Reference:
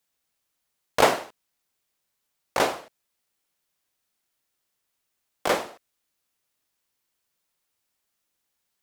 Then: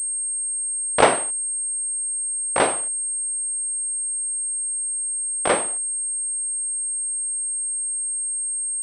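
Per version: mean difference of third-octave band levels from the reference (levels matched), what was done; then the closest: 5.0 dB: class-D stage that switches slowly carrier 8.5 kHz; trim +3.5 dB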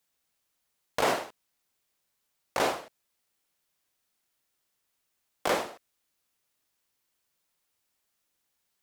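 3.5 dB: peak limiter -15 dBFS, peak gain reduction 10 dB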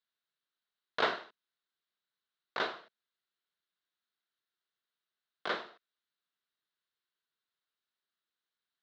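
7.0 dB: cabinet simulation 220–4000 Hz, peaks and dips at 280 Hz -8 dB, 540 Hz -8 dB, 820 Hz -8 dB, 1.5 kHz +5 dB, 2.4 kHz -6 dB, 3.9 kHz +7 dB; trim -8.5 dB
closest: second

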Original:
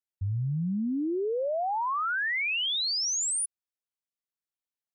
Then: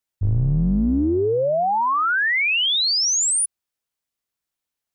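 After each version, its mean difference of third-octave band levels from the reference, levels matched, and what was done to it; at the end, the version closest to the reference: 5.0 dB: octave divider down 2 oct, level -4 dB; trim +9 dB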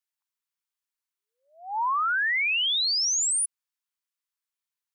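2.5 dB: steep high-pass 870 Hz 72 dB/octave; trim +4 dB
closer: second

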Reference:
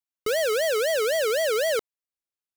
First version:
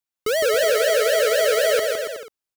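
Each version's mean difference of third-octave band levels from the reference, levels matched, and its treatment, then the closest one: 3.0 dB: bouncing-ball echo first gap 160 ms, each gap 0.75×, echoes 5; trim +3 dB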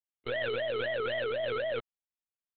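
15.5 dB: monotone LPC vocoder at 8 kHz 120 Hz; trim -8.5 dB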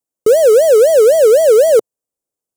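7.5 dB: ten-band graphic EQ 125 Hz +4 dB, 250 Hz +5 dB, 500 Hz +11 dB, 2 kHz -10 dB, 4 kHz -7 dB, 8 kHz +6 dB; trim +6.5 dB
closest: first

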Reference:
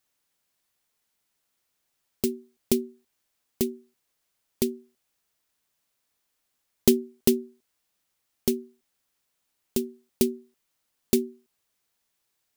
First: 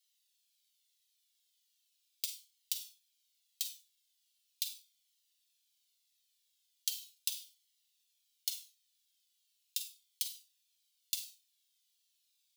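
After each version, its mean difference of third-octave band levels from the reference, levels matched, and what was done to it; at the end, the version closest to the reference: 17.0 dB: ladder high-pass 2.9 kHz, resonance 45%; Schroeder reverb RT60 0.32 s, combs from 32 ms, DRR 7 dB; compression 6:1, threshold -38 dBFS, peak gain reduction 10.5 dB; Shepard-style flanger falling 0.39 Hz; trim +11 dB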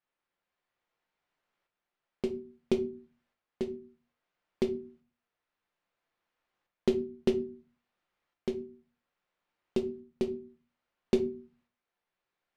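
8.5 dB: low-pass 2.2 kHz 12 dB/octave; bass shelf 280 Hz -7.5 dB; tremolo saw up 0.6 Hz, depth 55%; simulated room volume 150 m³, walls furnished, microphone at 0.86 m; trim +2 dB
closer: second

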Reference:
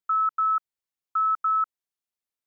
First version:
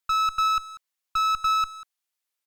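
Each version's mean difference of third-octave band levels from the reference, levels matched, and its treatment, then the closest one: 9.0 dB: high-pass 1 kHz 6 dB/octave; one-sided clip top -33 dBFS, bottom -26 dBFS; speakerphone echo 190 ms, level -12 dB; trim +7.5 dB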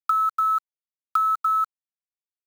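4.5 dB: Chebyshev low-pass 1.4 kHz, order 8; bit crusher 8-bit; three bands compressed up and down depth 100%; trim +2.5 dB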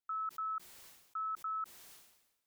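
2.5 dB: level held to a coarse grid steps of 16 dB; hum notches 60/120/180/240/300/360 Hz; peak limiter -34.5 dBFS, peak gain reduction 8 dB; decay stretcher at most 59 dB/s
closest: third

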